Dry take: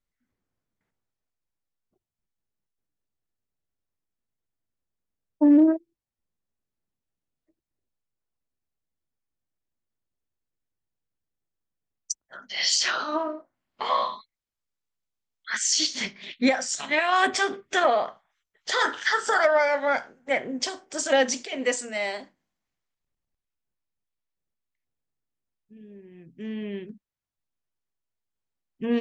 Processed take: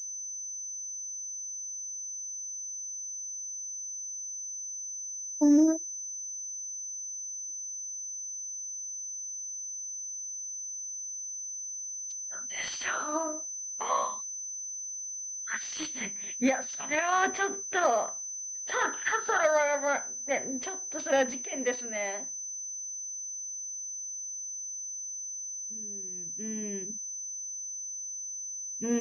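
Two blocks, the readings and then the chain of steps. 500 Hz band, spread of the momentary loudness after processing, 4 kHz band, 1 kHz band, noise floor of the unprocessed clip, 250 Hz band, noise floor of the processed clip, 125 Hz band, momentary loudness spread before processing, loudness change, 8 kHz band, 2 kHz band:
-4.5 dB, 8 LU, -13.5 dB, -4.5 dB, under -85 dBFS, -4.5 dB, -39 dBFS, n/a, 14 LU, -7.5 dB, +5.5 dB, -5.5 dB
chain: pulse-width modulation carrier 6100 Hz; gain -4.5 dB

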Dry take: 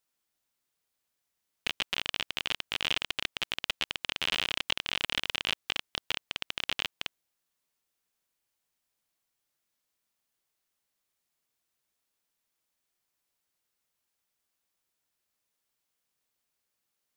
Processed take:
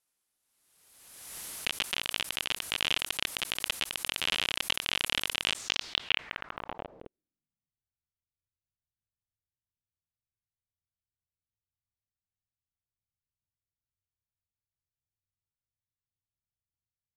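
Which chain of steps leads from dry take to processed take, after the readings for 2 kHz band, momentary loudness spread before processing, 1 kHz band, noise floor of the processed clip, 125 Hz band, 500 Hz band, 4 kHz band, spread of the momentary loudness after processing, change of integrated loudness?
+0.5 dB, 5 LU, +1.0 dB, under -85 dBFS, +0.5 dB, +1.0 dB, +0.5 dB, 13 LU, +1.0 dB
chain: low-pass sweep 11000 Hz -> 100 Hz, 5.41–7.81; backwards sustainer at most 40 dB/s; gain -1 dB

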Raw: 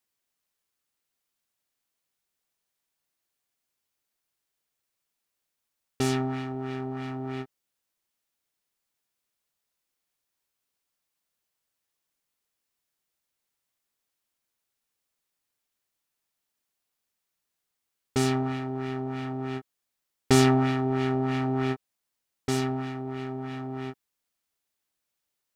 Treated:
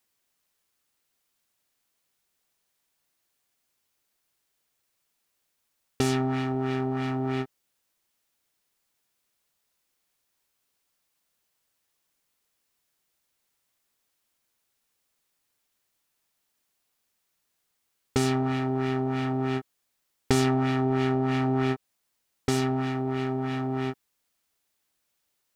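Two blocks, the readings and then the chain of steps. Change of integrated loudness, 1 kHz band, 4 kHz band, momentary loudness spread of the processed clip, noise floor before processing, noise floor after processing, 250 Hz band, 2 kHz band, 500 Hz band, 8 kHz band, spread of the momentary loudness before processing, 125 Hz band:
+1.0 dB, +1.5 dB, -0.5 dB, 7 LU, -83 dBFS, -77 dBFS, +1.5 dB, +1.0 dB, +1.0 dB, -1.5 dB, 13 LU, +1.5 dB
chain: compressor 3:1, threshold -29 dBFS, peak gain reduction 10.5 dB; gain +6 dB

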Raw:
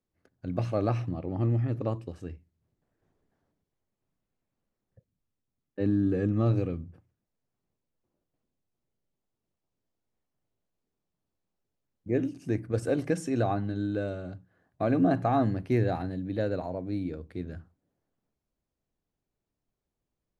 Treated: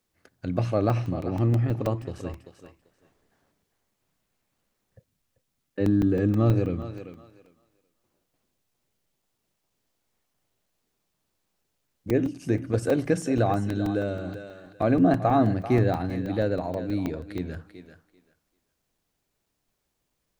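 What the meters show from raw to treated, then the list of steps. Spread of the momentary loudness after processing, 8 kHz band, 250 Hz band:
16 LU, +5.5 dB, +4.0 dB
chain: thinning echo 0.39 s, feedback 17%, high-pass 180 Hz, level -13 dB; crackling interface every 0.16 s, samples 128, zero, from 0.9; mismatched tape noise reduction encoder only; gain +4 dB

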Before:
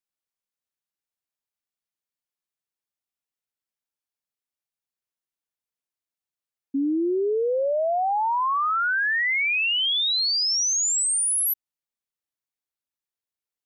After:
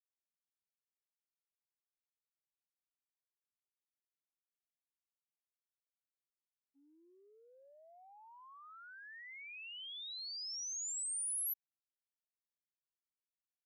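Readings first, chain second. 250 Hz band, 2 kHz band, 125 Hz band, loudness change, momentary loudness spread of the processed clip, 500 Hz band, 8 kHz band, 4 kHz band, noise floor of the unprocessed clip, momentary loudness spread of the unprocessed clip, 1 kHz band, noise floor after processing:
under -40 dB, -28.5 dB, n/a, -18.5 dB, 21 LU, under -40 dB, -17.0 dB, -22.5 dB, under -85 dBFS, 5 LU, -34.5 dB, under -85 dBFS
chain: expander -11 dBFS; differentiator; gain +2.5 dB

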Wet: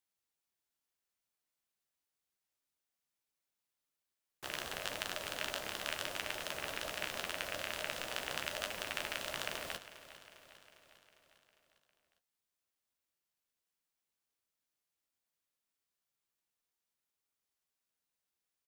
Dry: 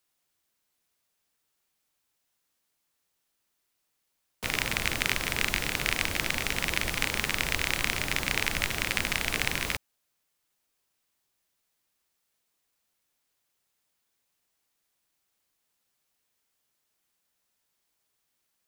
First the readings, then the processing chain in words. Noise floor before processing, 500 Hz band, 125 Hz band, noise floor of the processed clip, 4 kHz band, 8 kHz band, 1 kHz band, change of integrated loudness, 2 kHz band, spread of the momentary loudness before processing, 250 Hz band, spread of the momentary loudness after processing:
-78 dBFS, -5.0 dB, -18.5 dB, under -85 dBFS, -9.5 dB, -11.5 dB, -7.5 dB, -11.5 dB, -12.5 dB, 2 LU, -14.5 dB, 10 LU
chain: ring modulator 610 Hz; flange 0.8 Hz, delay 9.4 ms, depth 7.1 ms, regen -40%; feedback echo 0.403 s, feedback 59%, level -15 dB; gain -5 dB

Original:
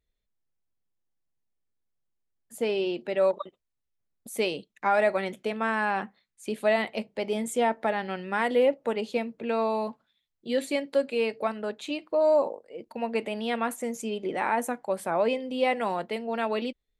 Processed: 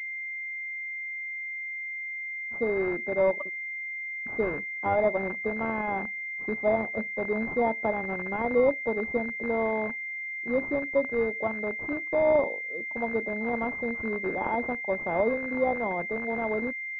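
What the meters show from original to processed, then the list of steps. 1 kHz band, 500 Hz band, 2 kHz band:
-2.5 dB, -0.5 dB, +5.5 dB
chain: rattling part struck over -41 dBFS, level -19 dBFS; pulse-width modulation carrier 2100 Hz

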